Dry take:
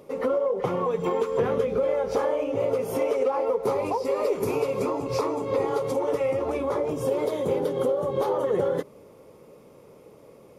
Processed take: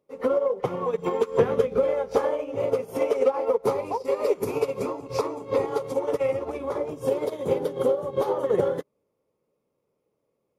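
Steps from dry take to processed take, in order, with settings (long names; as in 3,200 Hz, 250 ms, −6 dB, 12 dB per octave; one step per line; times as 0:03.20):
expander for the loud parts 2.5 to 1, over −41 dBFS
level +6 dB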